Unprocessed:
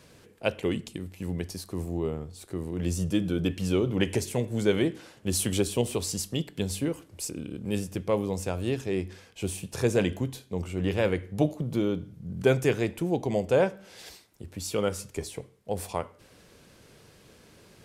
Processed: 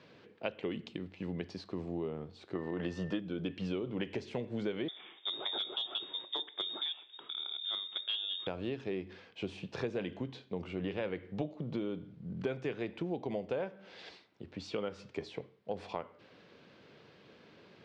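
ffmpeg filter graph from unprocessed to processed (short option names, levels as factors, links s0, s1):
-filter_complex "[0:a]asettb=1/sr,asplit=3[s0][s1][s2];[s0]atrim=end=2.554[s3];[s1]atrim=start=2.55:end=3.2,asetpts=PTS-STARTPTS,afade=t=in:d=0.004:c=qsin,afade=t=out:st=0.646:d=0.004:c=qsin,equalizer=f=1100:w=0.43:g=10,bandreject=f=2300:w=8.2,aeval=exprs='val(0)+0.00501*sin(2*PI*1800*n/s)':c=same[s4];[s2]atrim=start=3.196[s5];[s3][s4]acrossfade=d=0.004:c1=hsin:c2=qsin[s6];[s6][s5]acrossfade=d=0.004:c1=qsin:c2=hsin,asettb=1/sr,asplit=3[s7][s8][s9];[s7]atrim=end=4.884[s10];[s8]atrim=start=4.88:end=8.47,asetpts=PTS-STARTPTS,afade=t=in:d=0.004:c=qsin,afade=t=out:st=3.586:d=0.004:c=qsin,lowpass=f=3200:t=q:w=0.5098,lowpass=f=3200:t=q:w=0.6013,lowpass=f=3200:t=q:w=0.9,lowpass=f=3200:t=q:w=2.563,afreqshift=-3800,equalizer=f=360:w=1.7:g=14.5,asoftclip=type=hard:threshold=0.0891[s11];[s9]atrim=start=8.466[s12];[s10][s11]acrossfade=d=0.004:c1=hsin:c2=qsin[s13];[s13][s12]acrossfade=d=0.004:c1=qsin:c2=hsin,highpass=160,acompressor=threshold=0.0282:ratio=6,lowpass=f=4100:w=0.5412,lowpass=f=4100:w=1.3066,volume=0.794"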